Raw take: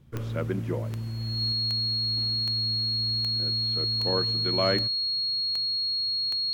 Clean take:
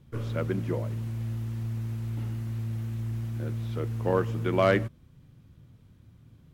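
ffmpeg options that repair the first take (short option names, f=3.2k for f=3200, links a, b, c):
-af "adeclick=t=4,bandreject=f=4.3k:w=30,asetnsamples=n=441:p=0,asendcmd='1.52 volume volume 3.5dB',volume=0dB"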